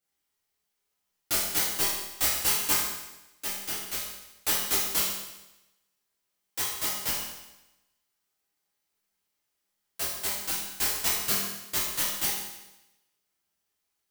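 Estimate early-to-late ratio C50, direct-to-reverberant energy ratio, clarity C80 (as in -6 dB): 0.5 dB, -8.5 dB, 3.5 dB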